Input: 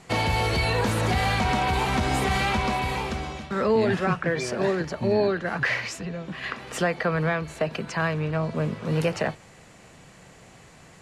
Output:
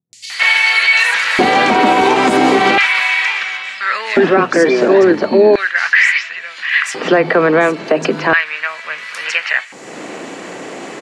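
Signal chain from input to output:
upward compression, threshold −33 dBFS
band-pass filter 100–6,900 Hz
three-band delay without the direct sound lows, highs, mids 130/300 ms, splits 150/4,600 Hz
auto-filter high-pass square 0.36 Hz 300–1,900 Hz
boost into a limiter +15 dB
level −1 dB

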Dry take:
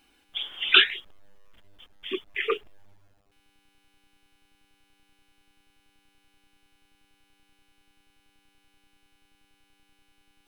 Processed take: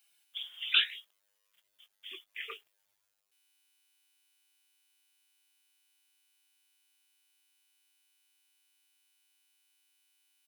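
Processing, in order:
first difference
double-tracking delay 18 ms −11.5 dB
level −1.5 dB

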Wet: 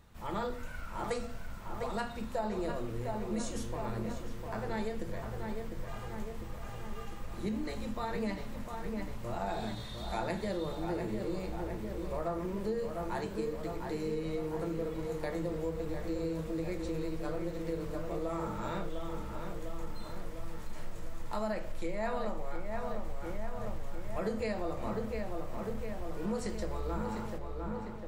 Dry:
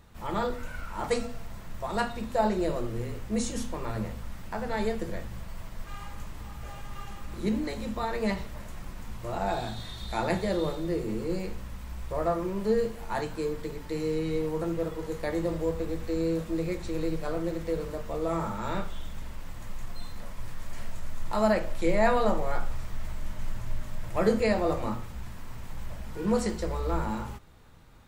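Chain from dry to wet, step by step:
on a send: feedback echo with a low-pass in the loop 702 ms, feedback 65%, low-pass 2,700 Hz, level −6.5 dB
on the sum: downward compressor 5 to 1, threshold −26 dBFS, peak gain reduction 8.5 dB
level −4.5 dB

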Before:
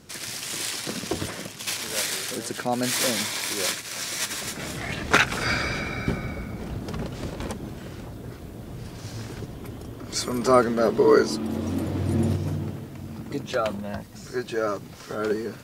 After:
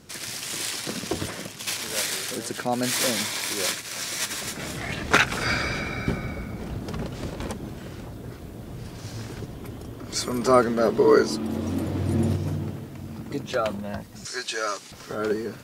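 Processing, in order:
0:14.25–0:14.92: meter weighting curve ITU-R 468

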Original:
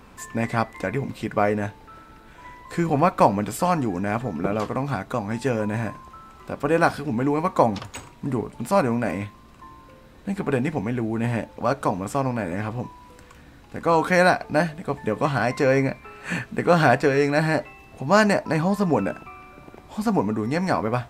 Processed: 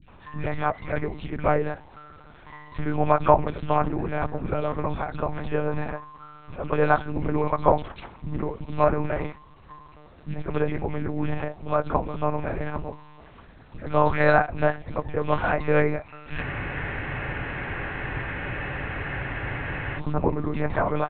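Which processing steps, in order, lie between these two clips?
three-band delay without the direct sound lows, highs, mids 30/80 ms, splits 230/2,200 Hz
one-pitch LPC vocoder at 8 kHz 150 Hz
frozen spectrum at 0:16.43, 3.55 s

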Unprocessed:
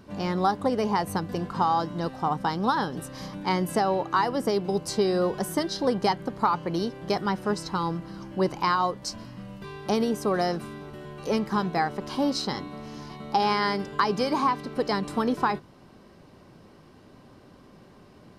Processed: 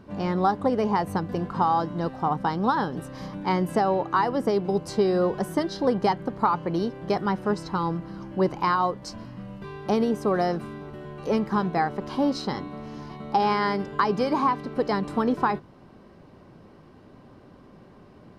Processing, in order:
high-shelf EQ 3,300 Hz −11 dB
level +2 dB

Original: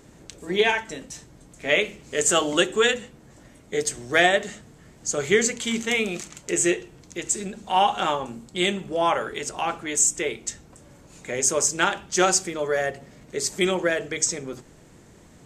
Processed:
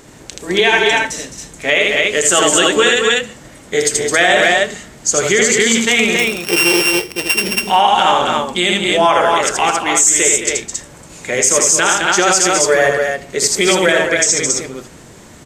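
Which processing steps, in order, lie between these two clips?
0:06.17–0:07.62: samples sorted by size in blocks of 16 samples
low-shelf EQ 480 Hz −6.5 dB
loudspeakers that aren't time-aligned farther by 27 metres −4 dB, 73 metres −10 dB, 94 metres −5 dB
boost into a limiter +13.5 dB
every ending faded ahead of time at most 330 dB per second
level −1 dB

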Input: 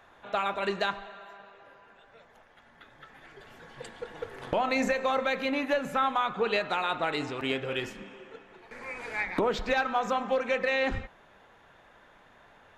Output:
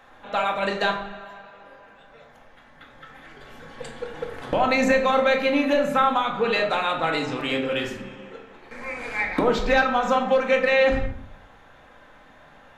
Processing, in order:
rectangular room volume 760 cubic metres, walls furnished, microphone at 2.1 metres
level +3.5 dB

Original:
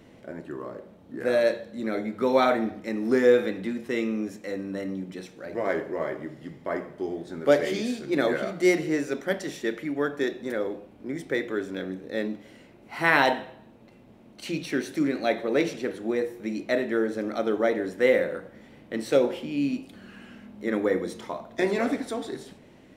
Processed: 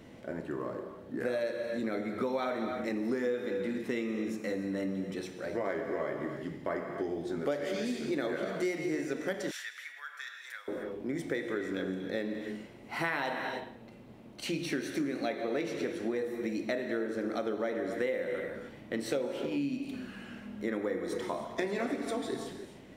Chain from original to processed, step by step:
reverb whose tail is shaped and stops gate 330 ms flat, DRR 7 dB
downward compressor 6 to 1, threshold −30 dBFS, peak gain reduction 16 dB
0:09.51–0:10.68: high-pass filter 1,300 Hz 24 dB per octave

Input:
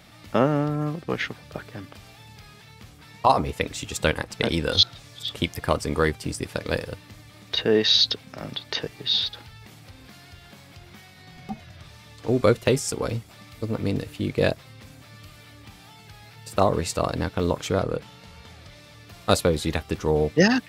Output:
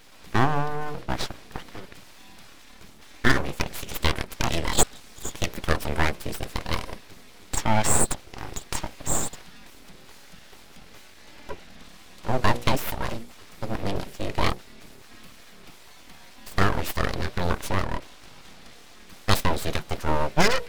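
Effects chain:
mains-hum notches 60/120/180/240/300/360/420 Hz
full-wave rectification
level +1.5 dB

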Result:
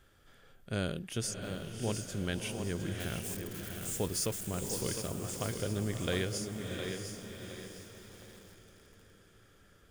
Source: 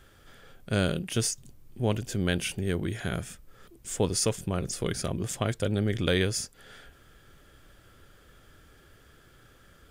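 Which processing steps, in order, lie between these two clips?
0:03.00–0:04.87: spike at every zero crossing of −28.5 dBFS
feedback delay with all-pass diffusion 655 ms, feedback 47%, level −7 dB
feedback echo at a low word length 710 ms, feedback 35%, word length 7 bits, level −7 dB
level −8 dB

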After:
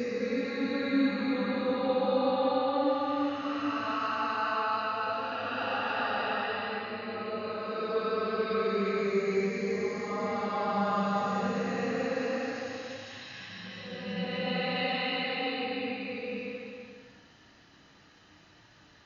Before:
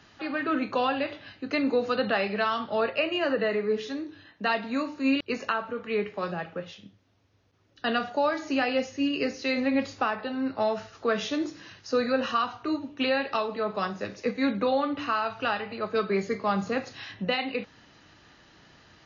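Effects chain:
extreme stretch with random phases 4.8×, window 0.50 s, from 0:14.23
level −2.5 dB

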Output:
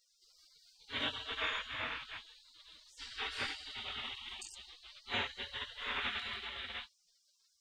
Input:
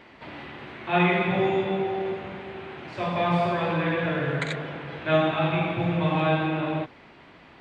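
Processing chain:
chorus effect 0.6 Hz, delay 20 ms, depth 4.5 ms
0:04.35–0:04.86: dynamic equaliser 1,500 Hz, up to +3 dB, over −43 dBFS, Q 1.9
gate on every frequency bin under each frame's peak −30 dB weak
level +8 dB

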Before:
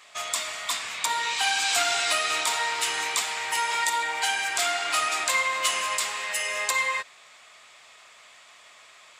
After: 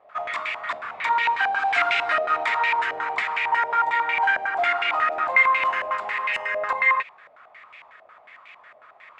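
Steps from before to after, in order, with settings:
low-pass on a step sequencer 11 Hz 650–2,400 Hz

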